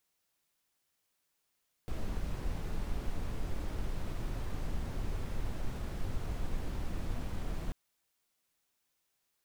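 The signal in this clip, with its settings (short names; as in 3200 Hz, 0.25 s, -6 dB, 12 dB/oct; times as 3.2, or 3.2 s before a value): noise brown, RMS -34 dBFS 5.84 s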